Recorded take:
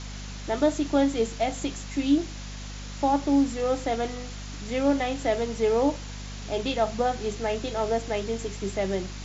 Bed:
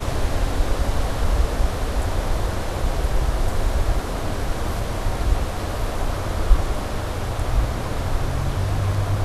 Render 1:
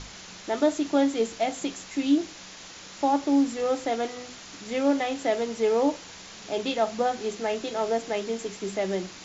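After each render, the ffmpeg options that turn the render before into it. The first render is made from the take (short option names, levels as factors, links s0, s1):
-af "bandreject=f=50:t=h:w=6,bandreject=f=100:t=h:w=6,bandreject=f=150:t=h:w=6,bandreject=f=200:t=h:w=6,bandreject=f=250:t=h:w=6"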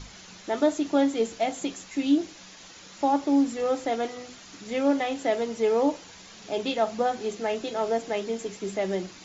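-af "afftdn=nr=6:nf=-45"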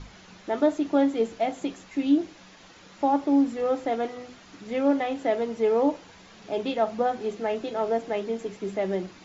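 -af "aemphasis=mode=reproduction:type=75fm"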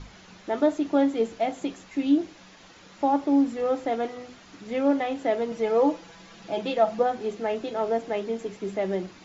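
-filter_complex "[0:a]asettb=1/sr,asplit=3[s0][s1][s2];[s0]atrim=end=5.514[s3];[s1]atrim=start=5.51:end=7.03,asetpts=PTS-STARTPTS,afade=t=in:d=0.004:c=qsin,afade=t=out:st=1.516:d=0.004:c=qsin,aecho=1:1:6:0.65,atrim=end_sample=67032[s4];[s2]atrim=start=7.026[s5];[s3][s4]acrossfade=d=0.004:c1=hsin:c2=qsin[s6];[s6][s5]acrossfade=d=0.004:c1=qsin:c2=hsin"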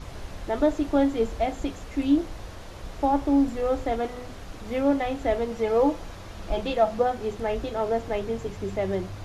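-filter_complex "[1:a]volume=0.15[s0];[0:a][s0]amix=inputs=2:normalize=0"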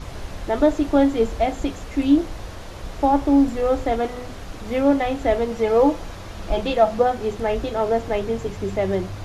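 -af "volume=1.78"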